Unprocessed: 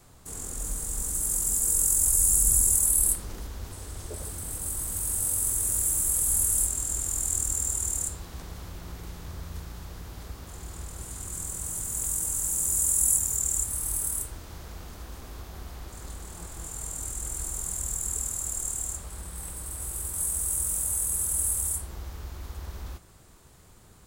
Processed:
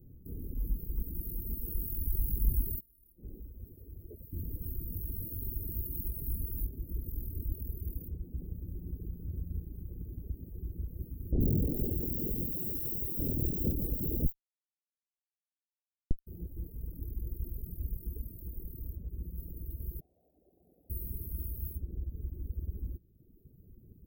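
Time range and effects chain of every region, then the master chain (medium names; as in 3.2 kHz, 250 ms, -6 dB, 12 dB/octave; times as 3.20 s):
2.80–4.33 s: bass shelf 470 Hz -9.5 dB + compression, threshold -37 dBFS
11.32–16.27 s: tilt shelf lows -5 dB, about 1.1 kHz + Schmitt trigger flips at -27.5 dBFS + bands offset in time lows, highs 80 ms, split 1.8 kHz
20.00–20.90 s: square wave that keeps the level + vowel filter a + level flattener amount 50%
whole clip: reverb removal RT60 1.3 s; inverse Chebyshev band-stop 1.1–7.4 kHz, stop band 60 dB; peaking EQ 7.6 kHz -7 dB 1.6 oct; trim +3.5 dB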